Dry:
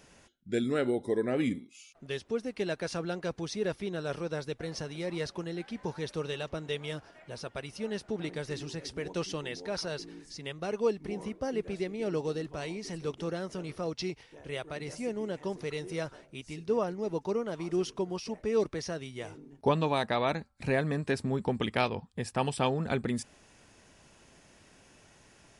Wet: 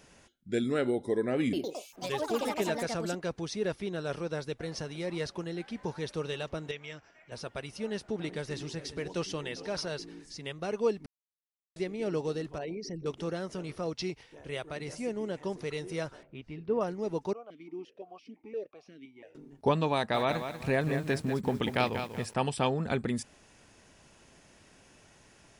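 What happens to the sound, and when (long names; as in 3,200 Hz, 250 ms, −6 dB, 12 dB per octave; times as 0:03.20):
0:01.42–0:03.58: delay with pitch and tempo change per echo 109 ms, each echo +5 semitones, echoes 3
0:06.71–0:07.32: Chebyshev low-pass with heavy ripple 7,800 Hz, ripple 9 dB
0:07.92–0:09.89: single-tap delay 405 ms −16 dB
0:11.06–0:11.76: silence
0:12.58–0:13.06: spectral envelope exaggerated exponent 2
0:16.23–0:16.81: high-frequency loss of the air 390 metres
0:17.33–0:19.35: formant filter that steps through the vowels 5.8 Hz
0:19.95–0:22.34: feedback echo at a low word length 191 ms, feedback 35%, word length 8 bits, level −8 dB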